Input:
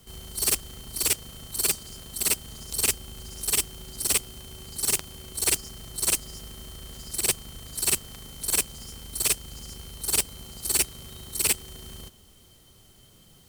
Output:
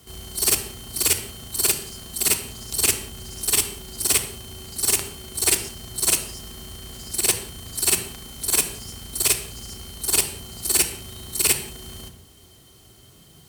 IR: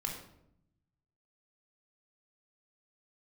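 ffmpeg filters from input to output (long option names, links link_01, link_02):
-filter_complex "[0:a]highpass=57,asplit=2[link_01][link_02];[1:a]atrim=start_sample=2205,afade=type=out:start_time=0.21:duration=0.01,atrim=end_sample=9702,asetrate=36162,aresample=44100[link_03];[link_02][link_03]afir=irnorm=-1:irlink=0,volume=-3dB[link_04];[link_01][link_04]amix=inputs=2:normalize=0"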